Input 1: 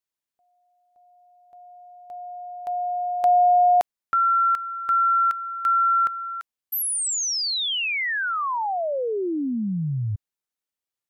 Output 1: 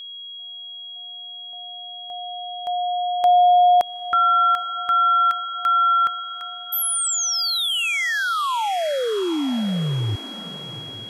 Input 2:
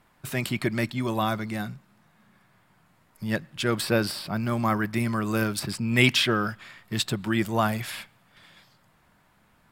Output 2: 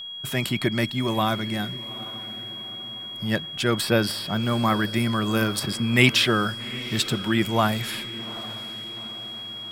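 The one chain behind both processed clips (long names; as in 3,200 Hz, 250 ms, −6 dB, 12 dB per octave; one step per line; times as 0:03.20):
feedback delay with all-pass diffusion 814 ms, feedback 54%, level −16 dB
steady tone 3,300 Hz −36 dBFS
level +2.5 dB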